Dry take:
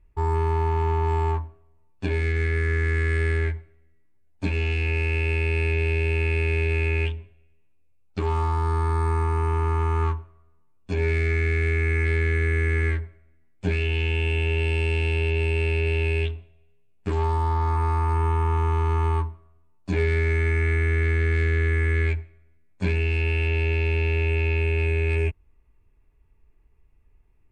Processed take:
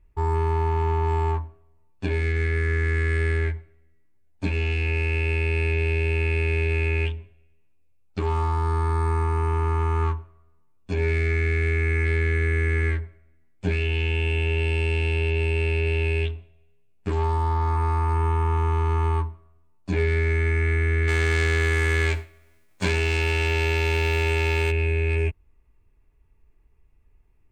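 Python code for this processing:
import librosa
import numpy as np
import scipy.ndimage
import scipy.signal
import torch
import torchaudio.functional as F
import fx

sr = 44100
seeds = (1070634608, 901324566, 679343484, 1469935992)

y = fx.envelope_flatten(x, sr, power=0.6, at=(21.07, 24.7), fade=0.02)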